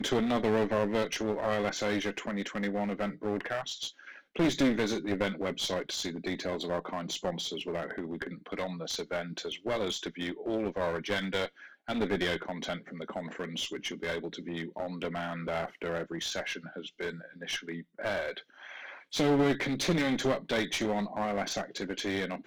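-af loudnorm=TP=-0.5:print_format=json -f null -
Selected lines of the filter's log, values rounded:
"input_i" : "-32.6",
"input_tp" : "-16.4",
"input_lra" : "5.7",
"input_thresh" : "-42.7",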